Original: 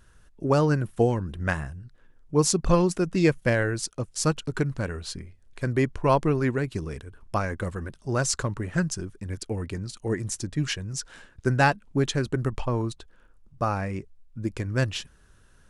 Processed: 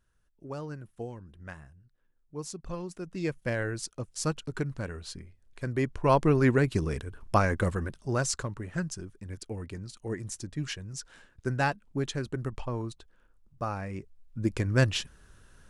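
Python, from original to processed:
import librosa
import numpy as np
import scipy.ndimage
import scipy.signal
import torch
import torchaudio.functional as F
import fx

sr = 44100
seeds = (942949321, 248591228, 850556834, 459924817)

y = fx.gain(x, sr, db=fx.line((2.76, -17.0), (3.67, -6.0), (5.73, -6.0), (6.54, 3.0), (7.69, 3.0), (8.51, -7.0), (13.84, -7.0), (14.48, 1.5)))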